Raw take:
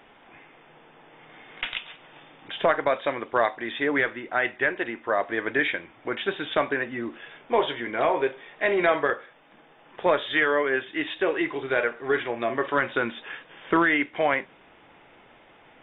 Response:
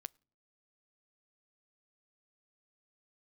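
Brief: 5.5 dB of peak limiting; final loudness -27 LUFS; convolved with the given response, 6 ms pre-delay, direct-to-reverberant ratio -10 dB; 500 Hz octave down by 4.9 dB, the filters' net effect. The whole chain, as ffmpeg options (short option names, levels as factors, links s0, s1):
-filter_complex "[0:a]equalizer=f=500:t=o:g=-6.5,alimiter=limit=0.158:level=0:latency=1,asplit=2[s0][s1];[1:a]atrim=start_sample=2205,adelay=6[s2];[s1][s2]afir=irnorm=-1:irlink=0,volume=5.62[s3];[s0][s3]amix=inputs=2:normalize=0,volume=0.398"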